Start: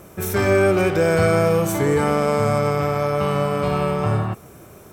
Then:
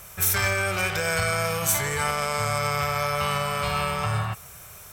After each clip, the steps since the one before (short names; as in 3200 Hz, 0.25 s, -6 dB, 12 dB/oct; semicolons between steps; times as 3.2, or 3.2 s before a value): limiter -12 dBFS, peak gain reduction 6 dB; passive tone stack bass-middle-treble 10-0-10; gain +8 dB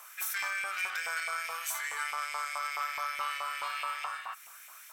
compressor 2:1, threshold -30 dBFS, peak gain reduction 7 dB; LFO high-pass saw up 4.7 Hz 900–2300 Hz; gain -7 dB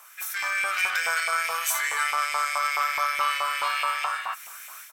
AGC gain up to 9 dB; doubler 12 ms -12 dB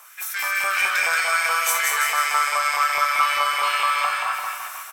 bouncing-ball echo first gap 0.18 s, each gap 0.9×, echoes 5; gain +3 dB